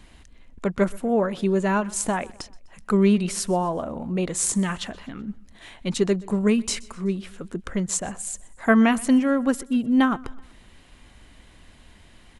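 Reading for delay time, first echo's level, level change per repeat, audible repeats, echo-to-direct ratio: 0.126 s, -23.0 dB, -6.0 dB, 2, -22.0 dB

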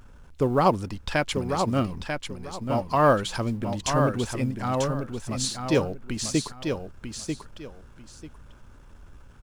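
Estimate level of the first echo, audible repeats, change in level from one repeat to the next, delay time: -6.0 dB, 2, -13.0 dB, 0.942 s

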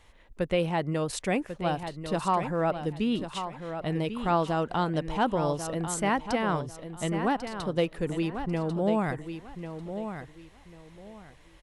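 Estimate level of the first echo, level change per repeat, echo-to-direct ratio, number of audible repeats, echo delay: -9.0 dB, -12.5 dB, -8.5 dB, 3, 1.094 s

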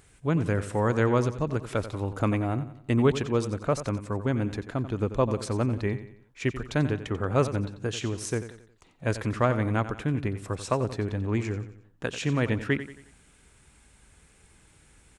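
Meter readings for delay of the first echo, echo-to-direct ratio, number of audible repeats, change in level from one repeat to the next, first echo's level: 90 ms, -11.5 dB, 3, -7.5 dB, -12.5 dB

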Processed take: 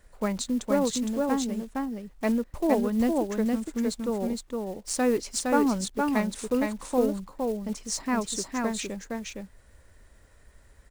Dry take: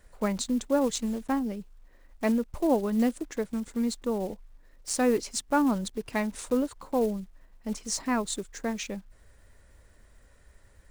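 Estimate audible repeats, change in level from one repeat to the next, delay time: 1, no steady repeat, 0.463 s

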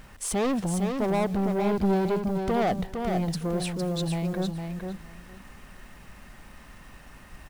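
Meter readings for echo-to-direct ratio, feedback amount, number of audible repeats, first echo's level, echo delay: -5.5 dB, 16%, 2, -5.5 dB, 0.458 s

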